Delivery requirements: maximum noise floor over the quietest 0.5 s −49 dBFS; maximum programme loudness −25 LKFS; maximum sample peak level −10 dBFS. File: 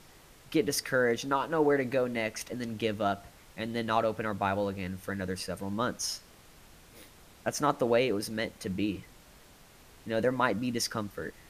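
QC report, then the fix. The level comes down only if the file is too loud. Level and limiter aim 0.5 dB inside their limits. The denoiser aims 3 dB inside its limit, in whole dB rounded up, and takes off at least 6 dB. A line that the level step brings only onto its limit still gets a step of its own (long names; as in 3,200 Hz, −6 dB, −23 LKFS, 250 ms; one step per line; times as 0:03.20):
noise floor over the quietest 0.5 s −56 dBFS: in spec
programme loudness −31.0 LKFS: in spec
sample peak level −11.0 dBFS: in spec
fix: no processing needed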